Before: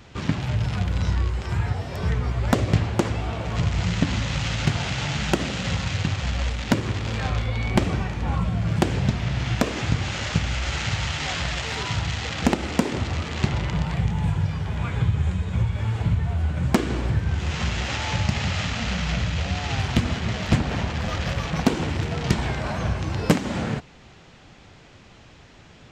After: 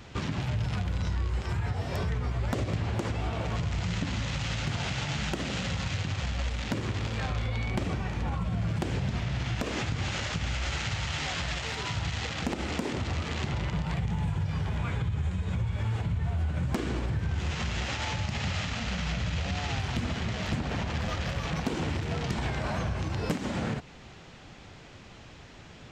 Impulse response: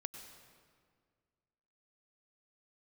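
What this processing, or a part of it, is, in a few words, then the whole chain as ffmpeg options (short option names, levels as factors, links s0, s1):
stacked limiters: -af "alimiter=limit=0.168:level=0:latency=1:release=64,alimiter=limit=0.0794:level=0:latency=1:release=147"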